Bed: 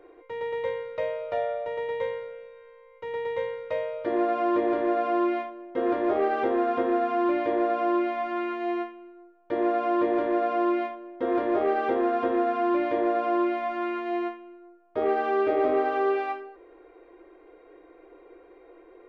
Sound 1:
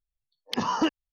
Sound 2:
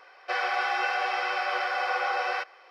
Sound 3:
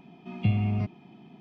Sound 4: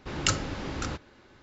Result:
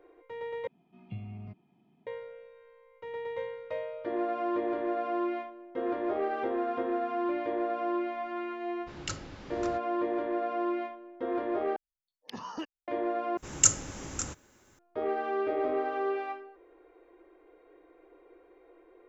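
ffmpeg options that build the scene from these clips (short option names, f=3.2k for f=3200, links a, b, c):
-filter_complex "[4:a]asplit=2[a][b];[0:a]volume=-6.5dB[c];[3:a]lowpass=f=2.8k:p=1[d];[b]aexciter=amount=15.8:drive=3.9:freq=6.5k[e];[c]asplit=4[f][g][h][i];[f]atrim=end=0.674[j];[d]atrim=end=1.4,asetpts=PTS-STARTPTS,volume=-16dB[k];[g]atrim=start=2.066:end=11.764[l];[1:a]atrim=end=1.12,asetpts=PTS-STARTPTS,volume=-14dB[m];[h]atrim=start=12.876:end=13.374[n];[e]atrim=end=1.42,asetpts=PTS-STARTPTS,volume=-7dB[o];[i]atrim=start=14.786[p];[a]atrim=end=1.42,asetpts=PTS-STARTPTS,volume=-11dB,afade=t=in:d=0.004:c=hsin,afade=t=out:st=1.416:d=0.004:c=hsin,adelay=8810[q];[j][k]acrossfade=d=0.004:c1=hsin:c2=hsin[r];[r][l]acrossfade=d=0.004:c1=hsin:c2=hsin[s];[s][m]acrossfade=d=0.004:c1=hsin:c2=hsin[t];[t][n]acrossfade=d=0.004:c1=hsin:c2=hsin[u];[u][o]acrossfade=d=0.004:c1=hsin:c2=hsin[v];[v][p]acrossfade=d=0.004:c1=hsin:c2=hsin[w];[w][q]amix=inputs=2:normalize=0"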